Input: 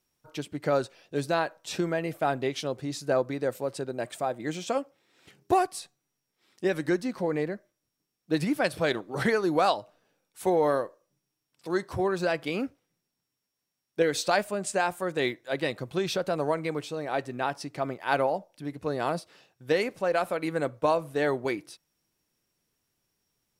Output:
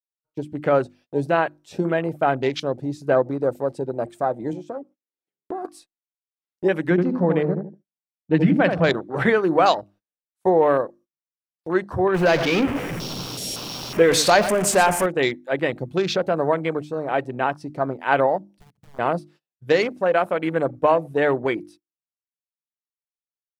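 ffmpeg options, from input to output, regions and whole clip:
ffmpeg -i in.wav -filter_complex "[0:a]asettb=1/sr,asplit=3[link_01][link_02][link_03];[link_01]atrim=end=4.534[link_04];[link_02]atrim=start=4.53:end=5.65,asetpts=PTS-STARTPTS,afade=type=in:duration=0.004:curve=qsin,afade=type=out:start_time=1.116:duration=0.004:curve=qsin,highpass=310,acompressor=threshold=-39dB:ratio=3:attack=3.2:release=140:knee=1:detection=peak,tiltshelf=frequency=670:gain=7.5[link_05];[link_03]atrim=start=5.646[link_06];[link_04][link_05]acrossfade=duration=0.004:curve1=hsin:curve2=qsin[link_07];[link_07][link_06]acrossfade=duration=0.004:curve1=qsin:curve2=hsin,asettb=1/sr,asplit=3[link_08][link_09][link_10];[link_08]atrim=end=6.904[link_11];[link_09]atrim=start=6.9:end=8.9,asetpts=PTS-STARTPTS,afade=type=in:duration=0.004:curve=qsin,afade=type=out:start_time=1.996:duration=0.004:curve=qsin,lowpass=4900,equalizer=frequency=170:width_type=o:width=0.5:gain=8.5,asplit=2[link_12][link_13];[link_13]adelay=78,lowpass=frequency=1200:poles=1,volume=-5dB,asplit=2[link_14][link_15];[link_15]adelay=78,lowpass=frequency=1200:poles=1,volume=0.34,asplit=2[link_16][link_17];[link_17]adelay=78,lowpass=frequency=1200:poles=1,volume=0.34,asplit=2[link_18][link_19];[link_19]adelay=78,lowpass=frequency=1200:poles=1,volume=0.34[link_20];[link_12][link_14][link_16][link_18][link_20]amix=inputs=5:normalize=0,atrim=end_sample=88200[link_21];[link_10]atrim=start=8.896[link_22];[link_11][link_21]acrossfade=duration=0.004:curve1=hsin:curve2=qsin[link_23];[link_23][link_22]acrossfade=duration=0.004:curve1=qsin:curve2=hsin,asettb=1/sr,asplit=3[link_24][link_25][link_26];[link_24]atrim=end=12.144[link_27];[link_25]atrim=start=12.14:end=15.06,asetpts=PTS-STARTPTS,afade=type=in:duration=0.004:curve=qsin,afade=type=out:start_time=2.916:duration=0.004:curve=qsin,aeval=exprs='val(0)+0.5*0.0473*sgn(val(0))':channel_layout=same,aecho=1:1:115:0.237,atrim=end_sample=128772[link_28];[link_26]atrim=start=15.056[link_29];[link_27][link_28]acrossfade=duration=0.004:curve1=hsin:curve2=qsin[link_30];[link_30][link_29]acrossfade=duration=0.004:curve1=qsin:curve2=hsin,asettb=1/sr,asplit=3[link_31][link_32][link_33];[link_31]atrim=end=18.504[link_34];[link_32]atrim=start=18.5:end=18.99,asetpts=PTS-STARTPTS,afade=type=in:duration=0.004:curve=qsin,afade=type=out:start_time=0.486:duration=0.004:curve=qsin,equalizer=frequency=230:width_type=o:width=2.6:gain=7.5,acompressor=threshold=-41dB:ratio=6:attack=3.2:release=140:knee=1:detection=peak,aeval=exprs='(mod(94.4*val(0)+1,2)-1)/94.4':channel_layout=same[link_35];[link_33]atrim=start=18.986[link_36];[link_34][link_35]acrossfade=duration=0.004:curve1=hsin:curve2=qsin[link_37];[link_37][link_36]acrossfade=duration=0.004:curve1=qsin:curve2=hsin,afwtdn=0.0126,bandreject=frequency=50:width_type=h:width=6,bandreject=frequency=100:width_type=h:width=6,bandreject=frequency=150:width_type=h:width=6,bandreject=frequency=200:width_type=h:width=6,bandreject=frequency=250:width_type=h:width=6,bandreject=frequency=300:width_type=h:width=6,bandreject=frequency=350:width_type=h:width=6,agate=range=-26dB:threshold=-54dB:ratio=16:detection=peak,volume=7dB" out.wav

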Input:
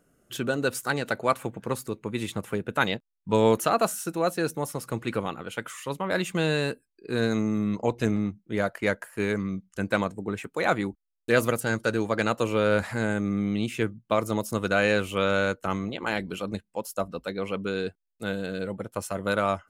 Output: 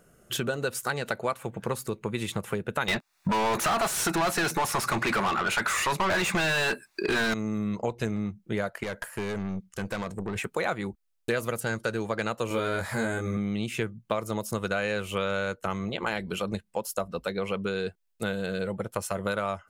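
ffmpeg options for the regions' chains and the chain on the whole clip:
ffmpeg -i in.wav -filter_complex "[0:a]asettb=1/sr,asplit=3[link_01][link_02][link_03];[link_01]atrim=end=2.884[link_04];[link_02]atrim=start=2.88:end=7.34,asetpts=PTS-STARTPTS,afade=type=in:duration=0.004:curve=qsin,afade=type=out:start_time=4.456:duration=0.004:curve=qsin,equalizer=frequency=490:width=4.7:gain=-14.5,bandreject=frequency=3100:width=5.1,asplit=2[link_05][link_06];[link_06]highpass=frequency=720:poles=1,volume=35dB,asoftclip=type=tanh:threshold=-10dB[link_07];[link_05][link_07]amix=inputs=2:normalize=0,lowpass=frequency=2900:poles=1,volume=-6dB[link_08];[link_03]atrim=start=7.336[link_09];[link_04][link_08]acrossfade=duration=0.004:curve1=hsin:curve2=qsin[link_10];[link_10][link_09]acrossfade=duration=0.004:curve1=qsin:curve2=hsin,asettb=1/sr,asplit=3[link_11][link_12][link_13];[link_11]atrim=end=8.834[link_14];[link_12]atrim=start=8.83:end=10.36,asetpts=PTS-STARTPTS,afade=type=in:duration=0.004:curve=qsin,afade=type=out:start_time=1.526:duration=0.004:curve=qsin,acompressor=threshold=-28dB:ratio=2.5:attack=3.2:release=140:knee=1:detection=peak,aeval=exprs='(tanh(39.8*val(0)+0.45)-tanh(0.45))/39.8':channel_layout=same[link_15];[link_13]atrim=start=10.356[link_16];[link_14][link_15]acrossfade=duration=0.004:curve1=hsin:curve2=qsin[link_17];[link_17][link_16]acrossfade=duration=0.004:curve1=qsin:curve2=hsin,asettb=1/sr,asplit=3[link_18][link_19][link_20];[link_18]atrim=end=12.484[link_21];[link_19]atrim=start=12.48:end=13.37,asetpts=PTS-STARTPTS,afade=type=in:duration=0.004:curve=qsin,afade=type=out:start_time=0.886:duration=0.004:curve=qsin,highshelf=frequency=11000:gain=11.5,bandreject=frequency=2700:width=9.6,asplit=2[link_22][link_23];[link_23]adelay=22,volume=-2dB[link_24];[link_22][link_24]amix=inputs=2:normalize=0,atrim=end_sample=39249[link_25];[link_20]atrim=start=13.366[link_26];[link_21][link_25]acrossfade=duration=0.004:curve1=hsin:curve2=qsin[link_27];[link_27][link_26]acrossfade=duration=0.004:curve1=qsin:curve2=hsin,equalizer=frequency=280:width=5.3:gain=-11,acompressor=threshold=-35dB:ratio=4,volume=7.5dB" out.wav

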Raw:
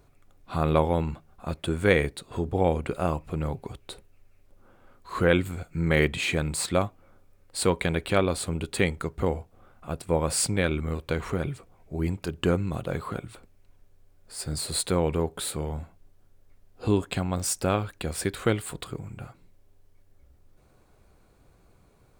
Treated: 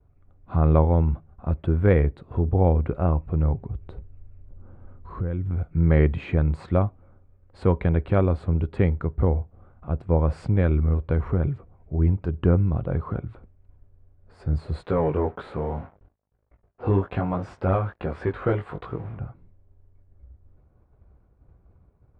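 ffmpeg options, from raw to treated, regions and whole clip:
ffmpeg -i in.wav -filter_complex "[0:a]asettb=1/sr,asplit=3[link_01][link_02][link_03];[link_01]atrim=end=3.614[link_04];[link_02]atrim=start=3.61:end=5.51,asetpts=PTS-STARTPTS,afade=type=in:duration=0.004:curve=qsin,afade=type=out:start_time=1.896:duration=0.004:curve=qsin,lowshelf=frequency=270:gain=9.5,acompressor=threshold=-38dB:ratio=2.5:attack=3.2:release=140:knee=1:detection=peak[link_05];[link_03]atrim=start=5.506[link_06];[link_04][link_05]acrossfade=duration=0.004:curve1=hsin:curve2=qsin[link_07];[link_07][link_06]acrossfade=duration=0.004:curve1=qsin:curve2=hsin,asettb=1/sr,asplit=3[link_08][link_09][link_10];[link_08]atrim=end=14.834[link_11];[link_09]atrim=start=14.83:end=19.19,asetpts=PTS-STARTPTS,afade=type=in:duration=0.004:curve=qsin,afade=type=out:start_time=4.356:duration=0.004:curve=qsin,acrusher=bits=7:mix=0:aa=0.5,flanger=delay=17.5:depth=3.5:speed=1.2,asplit=2[link_12][link_13];[link_13]highpass=frequency=720:poles=1,volume=18dB,asoftclip=type=tanh:threshold=-12.5dB[link_14];[link_12][link_14]amix=inputs=2:normalize=0,lowpass=frequency=2300:poles=1,volume=-6dB[link_15];[link_10]atrim=start=19.186[link_16];[link_11][link_15]acrossfade=duration=0.004:curve1=hsin:curve2=qsin[link_17];[link_17][link_16]acrossfade=duration=0.004:curve1=qsin:curve2=hsin,agate=range=-33dB:threshold=-53dB:ratio=3:detection=peak,lowpass=1300,equalizer=frequency=68:width_type=o:width=2.2:gain=12" out.wav

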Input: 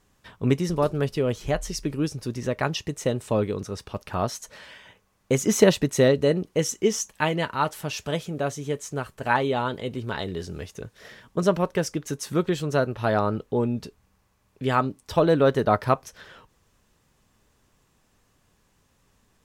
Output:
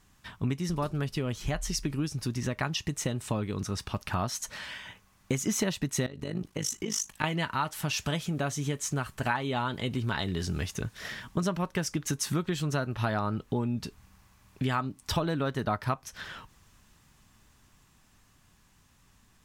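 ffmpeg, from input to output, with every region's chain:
ffmpeg -i in.wav -filter_complex "[0:a]asettb=1/sr,asplit=3[link_01][link_02][link_03];[link_01]atrim=end=6.064[link_04];[link_02]atrim=start=6.06:end=7.24,asetpts=PTS-STARTPTS,afade=type=in:duration=0.004:curve=qsin,afade=type=out:start_time=1.176:duration=0.004:curve=qsin,acompressor=threshold=-26dB:ratio=12:attack=3.2:release=140:knee=1:detection=peak,tremolo=f=51:d=0.788[link_05];[link_03]atrim=start=7.236[link_06];[link_04][link_05]acrossfade=duration=0.004:curve1=hsin:curve2=qsin[link_07];[link_07][link_06]acrossfade=duration=0.004:curve1=qsin:curve2=hsin,dynaudnorm=framelen=620:gausssize=13:maxgain=11.5dB,equalizer=frequency=480:width=1.5:gain=-10.5,acompressor=threshold=-30dB:ratio=5,volume=3dB" out.wav

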